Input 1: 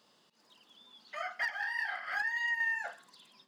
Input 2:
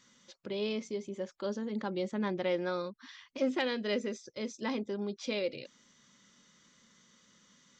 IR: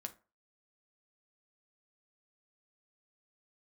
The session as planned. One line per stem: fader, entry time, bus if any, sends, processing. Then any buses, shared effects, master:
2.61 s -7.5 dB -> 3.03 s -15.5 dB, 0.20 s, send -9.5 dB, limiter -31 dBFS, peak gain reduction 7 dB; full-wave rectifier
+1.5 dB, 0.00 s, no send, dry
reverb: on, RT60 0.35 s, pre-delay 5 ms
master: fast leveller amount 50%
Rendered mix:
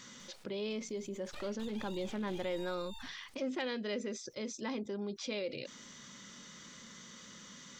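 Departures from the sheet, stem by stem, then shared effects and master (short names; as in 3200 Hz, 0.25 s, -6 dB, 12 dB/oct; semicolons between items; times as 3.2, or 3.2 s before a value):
stem 1 -7.5 dB -> -15.0 dB; stem 2 +1.5 dB -> -7.5 dB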